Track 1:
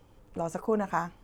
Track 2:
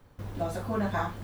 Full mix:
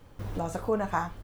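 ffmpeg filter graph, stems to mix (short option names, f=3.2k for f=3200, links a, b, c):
-filter_complex "[0:a]volume=0.5dB,asplit=2[a][b];[1:a]adelay=3.2,volume=2dB[c];[b]apad=whole_len=54512[d];[c][d]sidechaincompress=threshold=-32dB:ratio=8:attack=9.2:release=728[e];[a][e]amix=inputs=2:normalize=0,asubboost=boost=7:cutoff=69"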